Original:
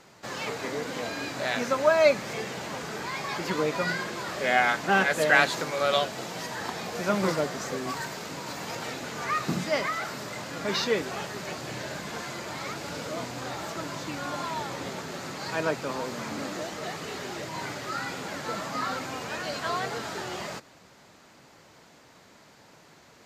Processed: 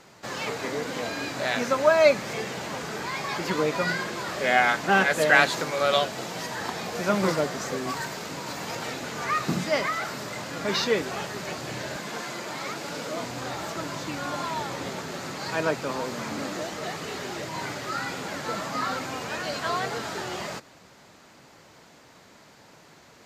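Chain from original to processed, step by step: 11.96–13.25 s: high-pass 160 Hz 12 dB/octave; trim +2 dB

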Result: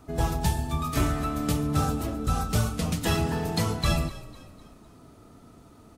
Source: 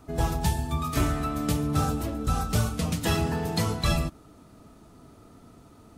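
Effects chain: frequency-shifting echo 252 ms, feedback 44%, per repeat -33 Hz, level -17.5 dB

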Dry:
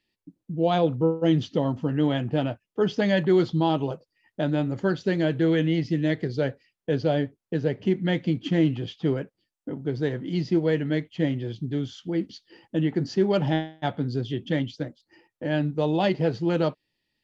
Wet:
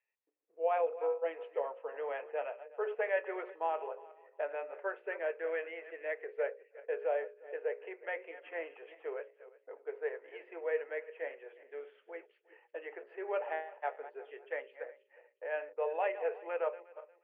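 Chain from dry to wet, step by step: backward echo that repeats 179 ms, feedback 42%, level -14 dB; Chebyshev band-pass 430–2600 Hz, order 5; hum notches 60/120/180/240/300/360/420/480/540/600 Hz; trim -6.5 dB

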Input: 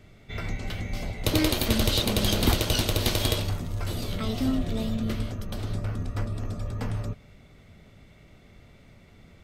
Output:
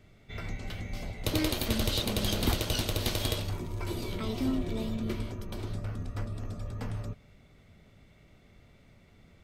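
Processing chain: 3.52–5.68 s: small resonant body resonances 360/960/2300 Hz, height 12 dB -> 9 dB; trim -5.5 dB

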